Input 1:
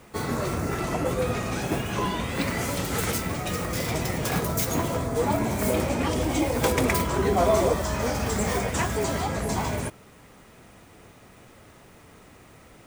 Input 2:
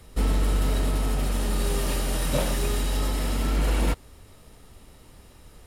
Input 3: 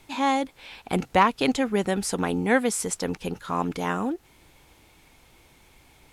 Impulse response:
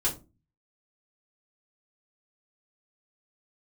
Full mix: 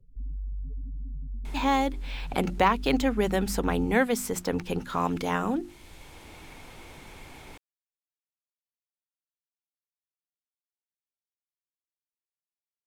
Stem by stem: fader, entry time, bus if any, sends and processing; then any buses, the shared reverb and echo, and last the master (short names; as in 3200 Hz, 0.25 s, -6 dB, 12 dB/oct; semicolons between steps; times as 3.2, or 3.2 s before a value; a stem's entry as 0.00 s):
off
-14.0 dB, 0.00 s, no send, spectral gate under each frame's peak -15 dB strong; comb 7.4 ms, depth 64%; limiter -22.5 dBFS, peak gain reduction 10 dB
-1.0 dB, 1.45 s, no send, notches 50/100/150/200/250/300/350 Hz; three-band squash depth 40%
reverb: off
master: low shelf 85 Hz +9.5 dB; notches 60/120/180 Hz; decimation joined by straight lines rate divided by 2×